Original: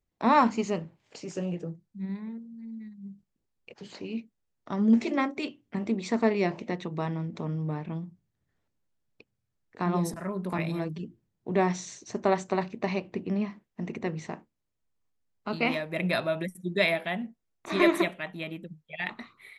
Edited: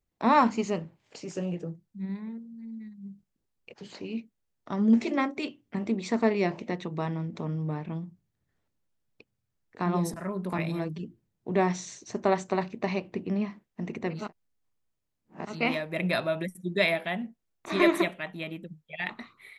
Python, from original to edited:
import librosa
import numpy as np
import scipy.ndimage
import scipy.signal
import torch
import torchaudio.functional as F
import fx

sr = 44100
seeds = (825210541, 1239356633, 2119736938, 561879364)

y = fx.edit(x, sr, fx.reverse_span(start_s=14.21, length_s=1.32, crossfade_s=0.24), tone=tone)